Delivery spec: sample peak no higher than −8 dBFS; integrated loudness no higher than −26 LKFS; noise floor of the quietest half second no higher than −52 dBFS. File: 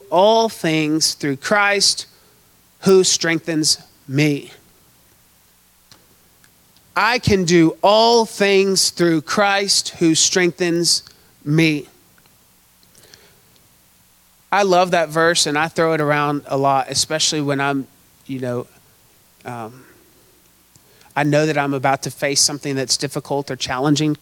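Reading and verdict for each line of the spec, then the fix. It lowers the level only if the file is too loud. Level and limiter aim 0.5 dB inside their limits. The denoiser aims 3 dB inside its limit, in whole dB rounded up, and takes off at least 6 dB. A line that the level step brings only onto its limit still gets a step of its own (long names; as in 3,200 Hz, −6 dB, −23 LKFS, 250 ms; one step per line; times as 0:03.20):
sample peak −3.5 dBFS: out of spec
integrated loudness −17.0 LKFS: out of spec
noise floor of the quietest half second −54 dBFS: in spec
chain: level −9.5 dB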